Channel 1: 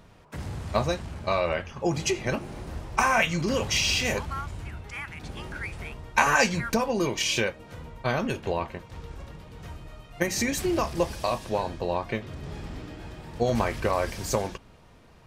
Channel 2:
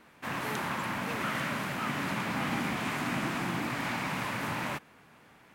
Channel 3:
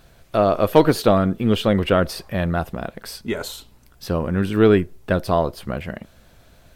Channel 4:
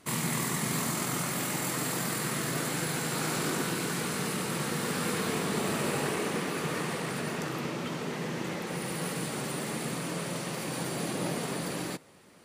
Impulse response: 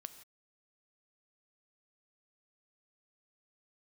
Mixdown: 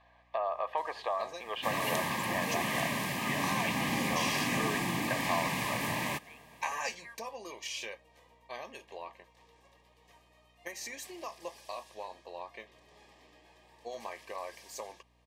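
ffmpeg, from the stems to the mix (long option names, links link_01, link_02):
-filter_complex "[0:a]highpass=580,adelay=450,volume=-12.5dB[link_01];[1:a]highshelf=frequency=4200:gain=8,adelay=1400,volume=-0.5dB[link_02];[2:a]highpass=frequency=810:width=0.5412,highpass=frequency=810:width=1.3066,alimiter=limit=-16dB:level=0:latency=1:release=136,volume=1.5dB,lowpass=1500,acompressor=threshold=-28dB:ratio=6,volume=0dB[link_03];[link_01][link_02][link_03]amix=inputs=3:normalize=0,aeval=exprs='val(0)+0.000398*(sin(2*PI*60*n/s)+sin(2*PI*2*60*n/s)/2+sin(2*PI*3*60*n/s)/3+sin(2*PI*4*60*n/s)/4+sin(2*PI*5*60*n/s)/5)':channel_layout=same,asuperstop=centerf=1400:order=12:qfactor=4"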